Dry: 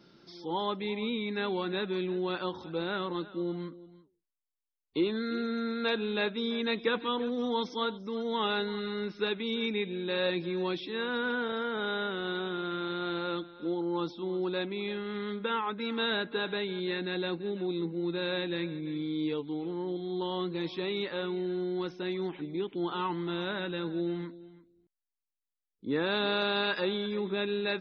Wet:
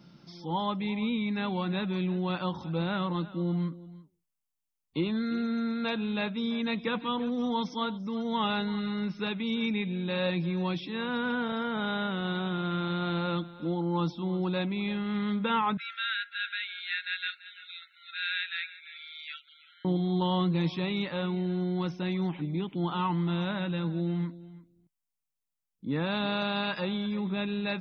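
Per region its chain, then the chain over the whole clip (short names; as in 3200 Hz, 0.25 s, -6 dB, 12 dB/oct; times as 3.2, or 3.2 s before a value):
15.77–19.85 brick-wall FIR high-pass 1300 Hz + tilt -3 dB/oct
whole clip: fifteen-band EQ 160 Hz +8 dB, 400 Hz -11 dB, 1600 Hz -6 dB, 4000 Hz -6 dB; vocal rider 2 s; gain +4.5 dB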